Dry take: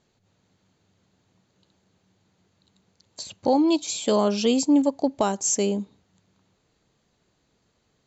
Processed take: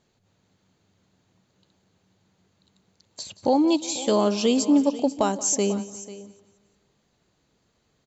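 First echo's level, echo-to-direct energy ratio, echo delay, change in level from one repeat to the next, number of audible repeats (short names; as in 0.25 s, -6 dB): -18.0 dB, -13.5 dB, 0.178 s, no steady repeat, 5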